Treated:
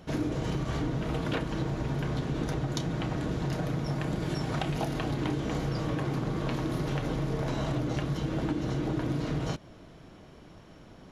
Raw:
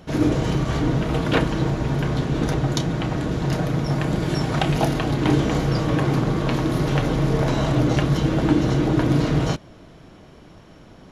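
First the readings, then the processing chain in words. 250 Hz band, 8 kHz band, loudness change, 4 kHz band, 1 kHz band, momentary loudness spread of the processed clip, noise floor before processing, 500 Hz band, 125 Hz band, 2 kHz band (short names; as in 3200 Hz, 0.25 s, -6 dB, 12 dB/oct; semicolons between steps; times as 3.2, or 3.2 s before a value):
-10.0 dB, -9.5 dB, -10.0 dB, -10.0 dB, -10.0 dB, 1 LU, -46 dBFS, -10.0 dB, -10.0 dB, -10.0 dB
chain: compressor, threshold -22 dBFS, peak gain reduction 9.5 dB; gain -5 dB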